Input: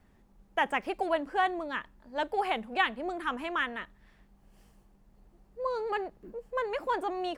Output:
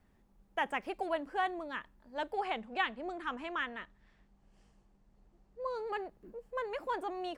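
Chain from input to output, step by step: 2.38–5.66 LPF 8300 Hz 24 dB/oct; gain -5.5 dB

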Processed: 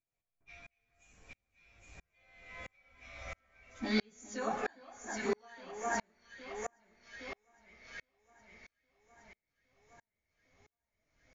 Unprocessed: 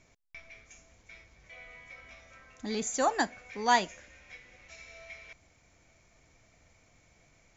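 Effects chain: Doppler pass-by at 2.33, 16 m/s, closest 11 m; LPF 6500 Hz 12 dB/oct; de-hum 121.8 Hz, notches 19; dynamic EQ 1600 Hz, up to +5 dB, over -49 dBFS, Q 1.3; compressor 6:1, threshold -36 dBFS, peak gain reduction 12.5 dB; plain phase-vocoder stretch 1.5×; echo with dull and thin repeats by turns 0.407 s, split 1600 Hz, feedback 70%, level -3 dB; spring tank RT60 1.4 s, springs 33/46 ms, chirp 65 ms, DRR 13.5 dB; dB-ramp tremolo swelling 1.5 Hz, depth 39 dB; gain +15.5 dB

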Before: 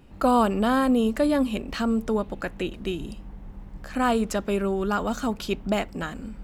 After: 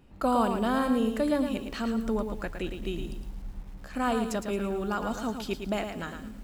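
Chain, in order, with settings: 2.03–3.61 low shelf 62 Hz +10 dB; lo-fi delay 0.111 s, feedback 35%, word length 8-bit, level -6.5 dB; gain -5.5 dB

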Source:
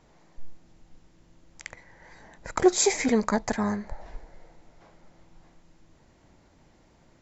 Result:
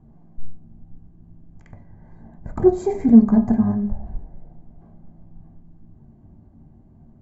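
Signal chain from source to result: de-hum 207.6 Hz, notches 32; reverb RT60 0.45 s, pre-delay 3 ms, DRR 4 dB; gain -11.5 dB

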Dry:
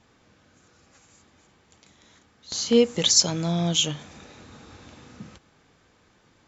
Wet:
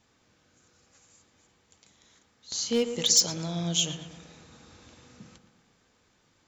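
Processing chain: hard clip -10.5 dBFS, distortion -22 dB; high shelf 4100 Hz +9 dB; darkening echo 0.117 s, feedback 59%, low-pass 2200 Hz, level -9.5 dB; gain -8 dB

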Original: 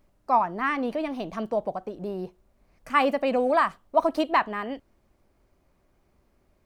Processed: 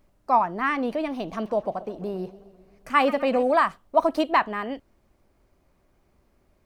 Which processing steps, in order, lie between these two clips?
1.14–3.43 warbling echo 0.13 s, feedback 64%, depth 121 cents, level -18 dB; gain +1.5 dB

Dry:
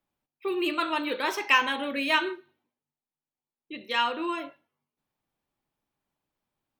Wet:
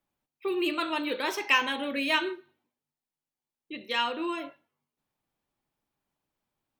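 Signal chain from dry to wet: dynamic EQ 1200 Hz, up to -4 dB, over -36 dBFS, Q 0.98

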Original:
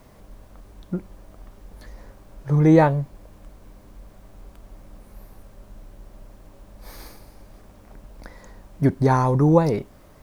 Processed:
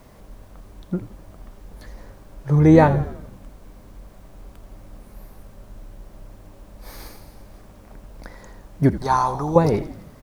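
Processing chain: 8.96–9.56 graphic EQ 125/250/500/1000/2000/4000 Hz -12/-10/-9/+6/-8/+5 dB; frequency-shifting echo 83 ms, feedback 58%, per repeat -67 Hz, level -14 dB; gain +2 dB

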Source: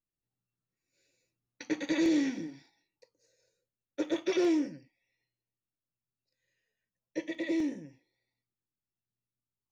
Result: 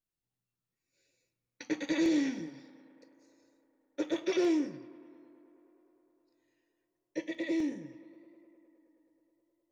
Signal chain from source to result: tape echo 0.105 s, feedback 89%, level -19 dB, low-pass 4100 Hz; gain -1 dB

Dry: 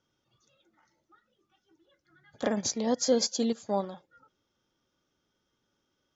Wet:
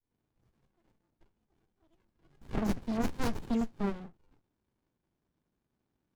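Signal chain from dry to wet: wow and flutter 21 cents; dispersion lows, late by 0.117 s, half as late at 2200 Hz; running maximum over 65 samples

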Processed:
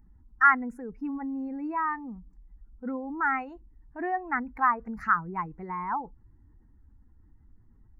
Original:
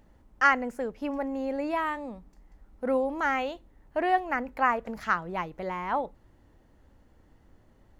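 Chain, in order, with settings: spectral contrast raised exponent 1.6; fixed phaser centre 1400 Hz, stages 4; gain +3 dB

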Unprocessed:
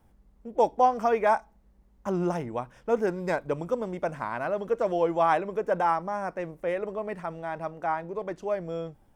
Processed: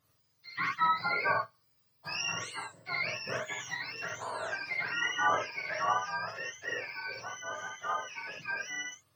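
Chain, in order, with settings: spectrum mirrored in octaves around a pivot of 990 Hz; non-linear reverb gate 90 ms rising, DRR 0 dB; gain -5.5 dB

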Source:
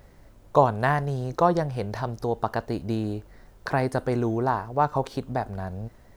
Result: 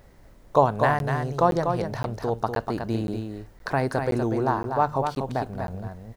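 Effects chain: notches 50/100/150 Hz; on a send: echo 0.244 s -6 dB; on the sum: crackling interface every 0.52 s, samples 512, zero, from 0.99

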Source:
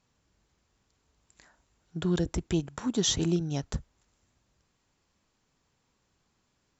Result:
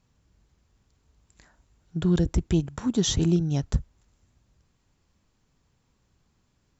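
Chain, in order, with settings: low shelf 200 Hz +11 dB

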